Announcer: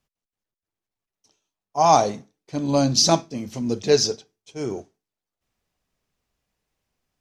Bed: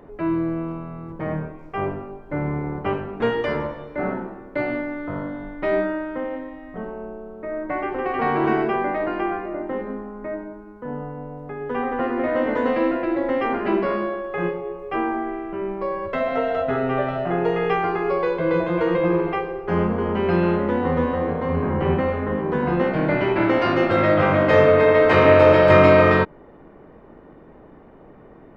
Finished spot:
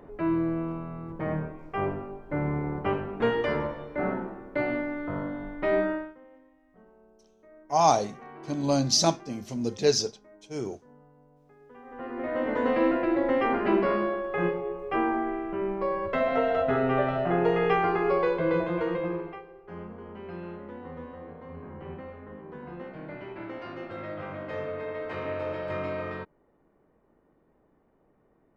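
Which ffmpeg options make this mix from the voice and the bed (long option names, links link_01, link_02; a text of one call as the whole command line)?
ffmpeg -i stem1.wav -i stem2.wav -filter_complex "[0:a]adelay=5950,volume=-5dB[link_01];[1:a]volume=18.5dB,afade=type=out:start_time=5.92:duration=0.23:silence=0.0891251,afade=type=in:start_time=11.84:duration=1.04:silence=0.0794328,afade=type=out:start_time=18.17:duration=1.26:silence=0.133352[link_02];[link_01][link_02]amix=inputs=2:normalize=0" out.wav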